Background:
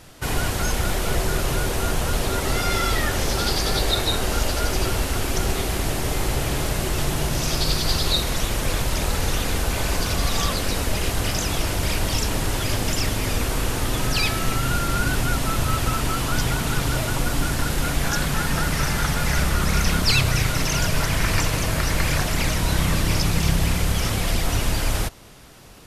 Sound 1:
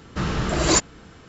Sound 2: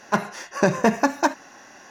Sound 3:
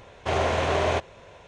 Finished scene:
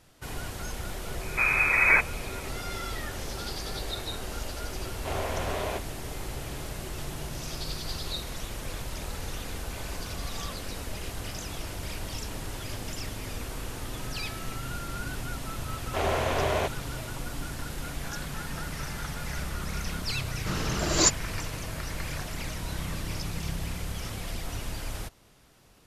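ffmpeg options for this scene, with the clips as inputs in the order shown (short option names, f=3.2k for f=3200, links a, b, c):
-filter_complex "[1:a]asplit=2[a][b];[3:a]asplit=2[c][d];[0:a]volume=-13dB[e];[a]lowpass=f=2.2k:t=q:w=0.5098,lowpass=f=2.2k:t=q:w=0.6013,lowpass=f=2.2k:t=q:w=0.9,lowpass=f=2.2k:t=q:w=2.563,afreqshift=-2600[f];[b]equalizer=f=5.8k:w=0.96:g=6[g];[f]atrim=end=1.28,asetpts=PTS-STARTPTS,afade=t=in:d=0.004:c=hsin,afade=t=out:st=1.276:d=0.004:c=hsin,adelay=1210[h];[c]atrim=end=1.47,asetpts=PTS-STARTPTS,volume=-8.5dB,afade=t=in:d=0.004:c=hsin,afade=t=out:st=1.466:d=0.004:c=hsin,adelay=4790[i];[d]atrim=end=1.47,asetpts=PTS-STARTPTS,volume=-3.5dB,afade=t=in:d=0.004:c=hsin,afade=t=out:st=1.466:d=0.004:c=hsin,adelay=15680[j];[g]atrim=end=1.28,asetpts=PTS-STARTPTS,volume=-6.5dB,afade=t=in:d=0.004:c=hsin,afade=t=out:st=1.276:d=0.004:c=hsin,adelay=20300[k];[e][h][i][j][k]amix=inputs=5:normalize=0"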